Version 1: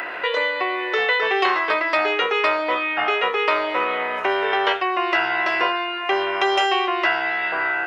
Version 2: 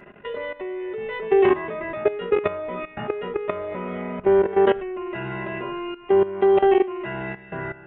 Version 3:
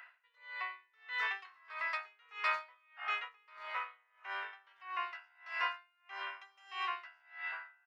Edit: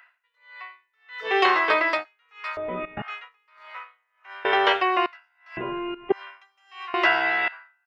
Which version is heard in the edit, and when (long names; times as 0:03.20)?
3
0:01.28–0:01.97: punch in from 1, crossfade 0.16 s
0:02.57–0:03.02: punch in from 2
0:04.45–0:05.06: punch in from 1
0:05.57–0:06.12: punch in from 2
0:06.94–0:07.48: punch in from 1